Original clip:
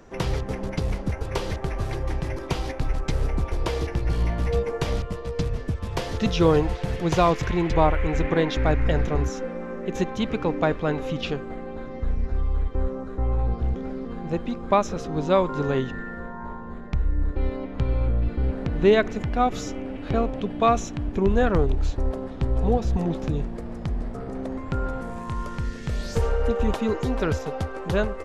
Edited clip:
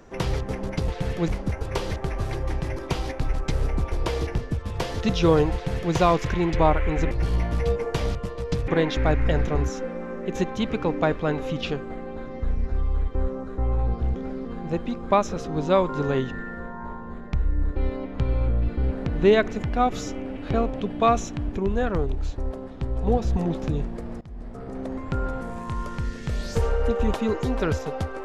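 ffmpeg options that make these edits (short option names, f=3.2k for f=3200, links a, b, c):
-filter_complex "[0:a]asplit=9[a][b][c][d][e][f][g][h][i];[a]atrim=end=0.882[j];[b]atrim=start=6.708:end=7.112[k];[c]atrim=start=0.878:end=3.982[l];[d]atrim=start=5.548:end=8.282[m];[e]atrim=start=3.978:end=5.552[n];[f]atrim=start=8.278:end=21.172[o];[g]atrim=start=21.168:end=22.672,asetpts=PTS-STARTPTS,volume=-4dB[p];[h]atrim=start=22.668:end=23.81,asetpts=PTS-STARTPTS,afade=t=out:st=1.138:d=0.004:c=hsin:silence=0.0794328[q];[i]atrim=start=23.81,asetpts=PTS-STARTPTS,afade=t=in:d=0.89:c=qsin:silence=0.0794328[r];[j][k]acrossfade=d=0.004:c1=hsin:c2=hsin[s];[s][l]acrossfade=d=0.004:c1=hsin:c2=hsin[t];[t][m]acrossfade=d=0.004:c1=hsin:c2=hsin[u];[u][n]acrossfade=d=0.004:c1=hsin:c2=hsin[v];[v][o]acrossfade=d=0.004:c1=hsin:c2=hsin[w];[w][p]acrossfade=d=0.004:c1=hsin:c2=hsin[x];[q][r]concat=n=2:v=0:a=1[y];[x][y]acrossfade=d=0.004:c1=hsin:c2=hsin"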